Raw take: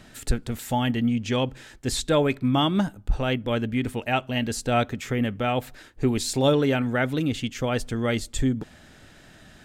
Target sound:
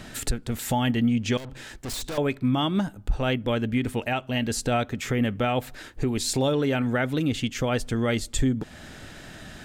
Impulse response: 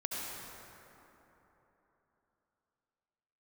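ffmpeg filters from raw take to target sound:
-filter_complex "[0:a]asettb=1/sr,asplit=3[a][b][c];[a]atrim=end=1.374[d];[b]atrim=start=1.37:end=2.18,asetpts=PTS-STARTPTS,afade=t=in:d=0.004:c=qsin,afade=t=out:st=0.806:d=0.004:c=qsin,aeval=exprs='(tanh(79.4*val(0)+0.4)-tanh(0.4))/79.4':c=same[e];[c]atrim=start=2.176[f];[d][e]acrossfade=d=0.004:c1=hsin:c2=qsin[g];[g][f]acrossfade=d=0.004:c1=qsin:c2=hsin,asplit=2[h][i];[i]acompressor=threshold=-36dB:ratio=6,volume=0dB[j];[h][j]amix=inputs=2:normalize=0,alimiter=limit=-16.5dB:level=0:latency=1:release=387,volume=1.5dB"

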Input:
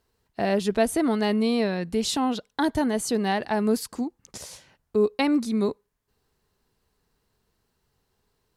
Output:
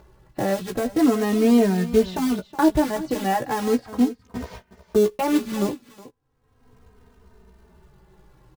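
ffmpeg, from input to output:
-filter_complex "[0:a]lowpass=1.6k,agate=range=-24dB:threshold=-53dB:ratio=16:detection=peak,lowshelf=f=180:g=4.5,alimiter=limit=-14.5dB:level=0:latency=1:release=248,acrusher=bits=4:mode=log:mix=0:aa=0.000001,acompressor=mode=upward:threshold=-28dB:ratio=2.5,asplit=2[a][b];[b]adelay=16,volume=-7dB[c];[a][c]amix=inputs=2:normalize=0,aecho=1:1:368:0.158,asplit=2[d][e];[e]adelay=3,afreqshift=-0.37[f];[d][f]amix=inputs=2:normalize=1,volume=6.5dB"

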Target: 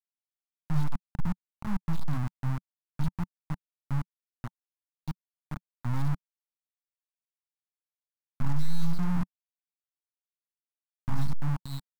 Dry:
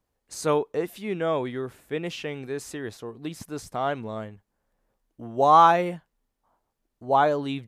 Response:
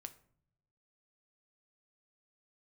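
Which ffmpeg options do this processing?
-filter_complex "[0:a]acrossover=split=180|4500[a][b][c];[a]acompressor=threshold=-49dB:ratio=12[d];[d][b][c]amix=inputs=3:normalize=0,aeval=exprs='abs(val(0))':c=same,afftfilt=real='re*gte(hypot(re,im),0.0141)':imag='im*gte(hypot(re,im),0.0141)':win_size=1024:overlap=0.75,asplit=2[e][f];[f]aecho=0:1:470:0.119[g];[e][g]amix=inputs=2:normalize=0,acontrast=46,atempo=0.64,afftfilt=real='re*(1-between(b*sr/4096,280,3700))':imag='im*(1-between(b*sr/4096,280,3700))':win_size=4096:overlap=0.75,acrusher=bits=3:mix=0:aa=0.000001,asoftclip=type=tanh:threshold=-9dB,firequalizer=gain_entry='entry(180,0);entry(420,-24);entry(890,-3);entry(3100,-16)':delay=0.05:min_phase=1,volume=-3dB"

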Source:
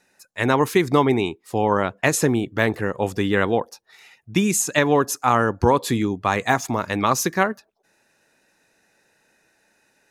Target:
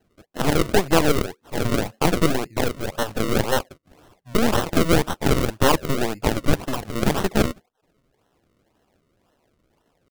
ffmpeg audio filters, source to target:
-af "acrusher=samples=41:mix=1:aa=0.000001:lfo=1:lforange=41:lforate=1.9,asetrate=49501,aresample=44100,atempo=0.890899,aeval=exprs='0.708*(cos(1*acos(clip(val(0)/0.708,-1,1)))-cos(1*PI/2))+0.158*(cos(8*acos(clip(val(0)/0.708,-1,1)))-cos(8*PI/2))':c=same,volume=-2dB"

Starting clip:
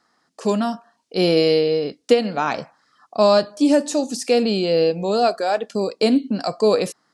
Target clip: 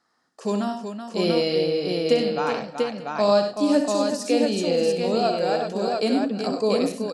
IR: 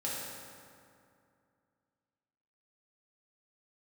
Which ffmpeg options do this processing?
-filter_complex "[0:a]aecho=1:1:64|97|118|378|690|890:0.422|0.335|0.112|0.422|0.668|0.106,asplit=2[a][b];[1:a]atrim=start_sample=2205[c];[b][c]afir=irnorm=-1:irlink=0,volume=-23dB[d];[a][d]amix=inputs=2:normalize=0,volume=-6.5dB"

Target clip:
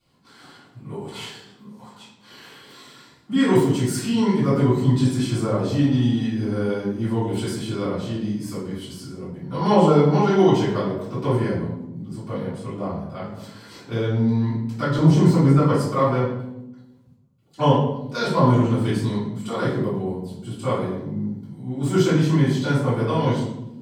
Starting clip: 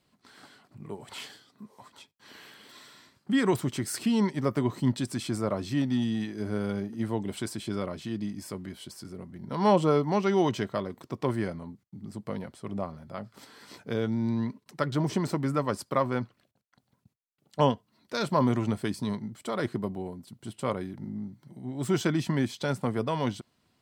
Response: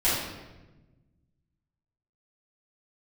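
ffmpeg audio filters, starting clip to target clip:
-filter_complex "[0:a]asettb=1/sr,asplit=3[a][b][c];[a]atrim=end=14.984[d];[b]atrim=start=14.98:end=15.58,asetpts=PTS-STARTPTS,afade=t=in:d=0.004:c=qsin,afade=t=out:st=0.596:d=0.004:c=qsin,lowshelf=f=400:g=6[e];[c]atrim=start=15.576[f];[d][e]acrossfade=d=0.004:c1=hsin:c2=qsin[g];[g][f]acrossfade=d=0.004:c1=qsin:c2=hsin[h];[1:a]atrim=start_sample=2205,asetrate=66150,aresample=44100[i];[h][i]afir=irnorm=-1:irlink=0,volume=-4.5dB"

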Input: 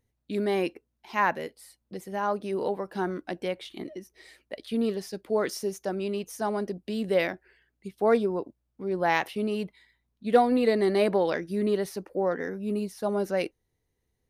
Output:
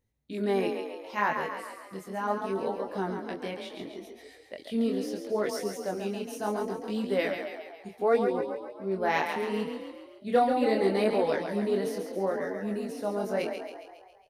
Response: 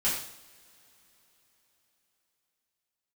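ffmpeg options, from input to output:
-filter_complex "[0:a]flanger=delay=18.5:depth=7.8:speed=0.72,asplit=8[a][b][c][d][e][f][g][h];[b]adelay=137,afreqshift=35,volume=-6.5dB[i];[c]adelay=274,afreqshift=70,volume=-11.5dB[j];[d]adelay=411,afreqshift=105,volume=-16.6dB[k];[e]adelay=548,afreqshift=140,volume=-21.6dB[l];[f]adelay=685,afreqshift=175,volume=-26.6dB[m];[g]adelay=822,afreqshift=210,volume=-31.7dB[n];[h]adelay=959,afreqshift=245,volume=-36.7dB[o];[a][i][j][k][l][m][n][o]amix=inputs=8:normalize=0"

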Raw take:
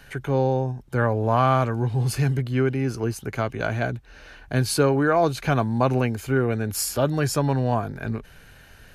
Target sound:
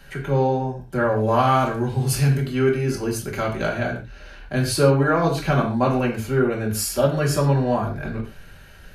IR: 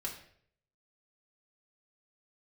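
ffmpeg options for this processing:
-filter_complex "[0:a]asettb=1/sr,asplit=3[a][b][c];[a]atrim=end=1.164[d];[b]atrim=start=1.16:end=3.69,asetpts=PTS-STARTPTS,afade=t=in:d=0.004:c=qsin,afade=t=out:st=2.526:d=0.004:c=qsin,highshelf=f=4.1k:g=7.5[e];[c]atrim=start=3.686[f];[d][e]acrossfade=d=0.004:c1=hsin:c2=qsin[g];[g][f]acrossfade=d=0.004:c1=qsin:c2=hsin[h];[1:a]atrim=start_sample=2205,afade=t=out:st=0.2:d=0.01,atrim=end_sample=9261[i];[h][i]afir=irnorm=-1:irlink=0,volume=2dB"

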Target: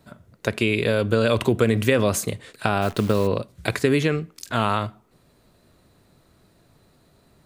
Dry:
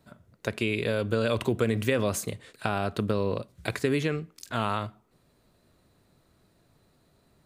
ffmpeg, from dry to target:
-filter_complex "[0:a]asplit=3[a][b][c];[a]afade=t=out:st=2.81:d=0.02[d];[b]acrusher=bits=8:dc=4:mix=0:aa=0.000001,afade=t=in:st=2.81:d=0.02,afade=t=out:st=3.26:d=0.02[e];[c]afade=t=in:st=3.26:d=0.02[f];[d][e][f]amix=inputs=3:normalize=0,volume=6.5dB"

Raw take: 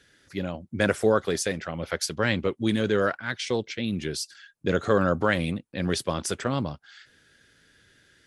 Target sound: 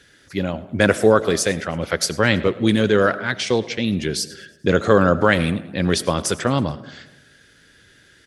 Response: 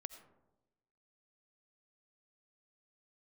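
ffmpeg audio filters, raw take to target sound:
-filter_complex "[0:a]asplit=5[a][b][c][d][e];[b]adelay=108,afreqshift=48,volume=-23dB[f];[c]adelay=216,afreqshift=96,volume=-28.4dB[g];[d]adelay=324,afreqshift=144,volume=-33.7dB[h];[e]adelay=432,afreqshift=192,volume=-39.1dB[i];[a][f][g][h][i]amix=inputs=5:normalize=0,asplit=2[j][k];[1:a]atrim=start_sample=2205[l];[k][l]afir=irnorm=-1:irlink=0,volume=2dB[m];[j][m]amix=inputs=2:normalize=0,volume=2.5dB"

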